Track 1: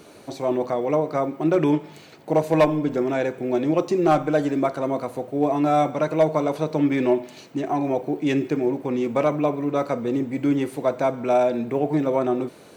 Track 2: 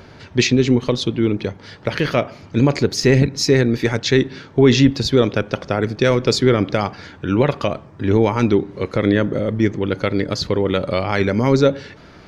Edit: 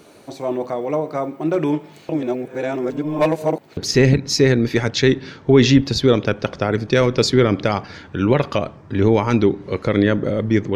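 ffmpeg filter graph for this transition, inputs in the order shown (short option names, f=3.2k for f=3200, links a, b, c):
-filter_complex "[0:a]apad=whole_dur=10.75,atrim=end=10.75,asplit=2[a][b];[a]atrim=end=2.092[c];[b]atrim=start=2.088:end=3.772,asetpts=PTS-STARTPTS,areverse[d];[1:a]atrim=start=2.858:end=9.84[e];[c][d]acrossfade=d=0.004:c1=hsin:c2=hsin[f];[f][e]acrossfade=d=0.004:c1=hsin:c2=hsin"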